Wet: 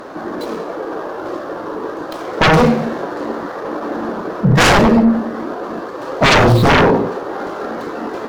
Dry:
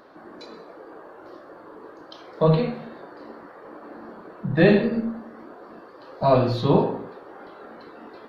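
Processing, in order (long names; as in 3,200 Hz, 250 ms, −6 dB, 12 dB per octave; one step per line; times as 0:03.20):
running median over 15 samples
sine wavefolder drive 16 dB, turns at −5.5 dBFS
level −1 dB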